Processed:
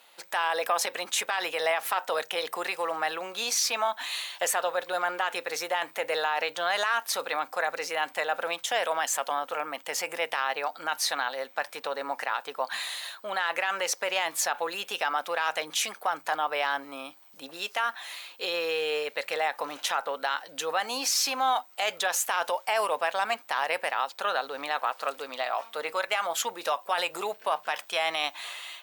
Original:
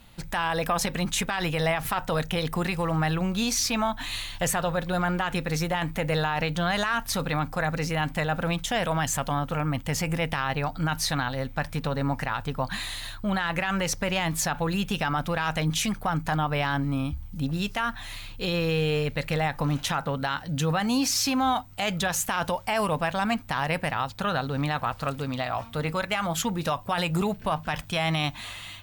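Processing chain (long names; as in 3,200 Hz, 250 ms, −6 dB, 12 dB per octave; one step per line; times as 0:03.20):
high-pass filter 440 Hz 24 dB per octave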